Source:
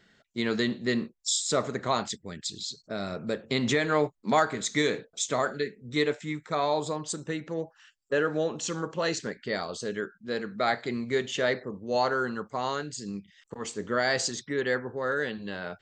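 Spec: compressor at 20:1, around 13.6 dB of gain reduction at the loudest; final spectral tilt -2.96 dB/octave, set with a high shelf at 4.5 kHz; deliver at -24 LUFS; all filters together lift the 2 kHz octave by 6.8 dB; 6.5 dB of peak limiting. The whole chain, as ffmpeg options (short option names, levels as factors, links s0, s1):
-af "equalizer=f=2000:t=o:g=7.5,highshelf=f=4500:g=4.5,acompressor=threshold=0.0316:ratio=20,volume=4.22,alimiter=limit=0.282:level=0:latency=1"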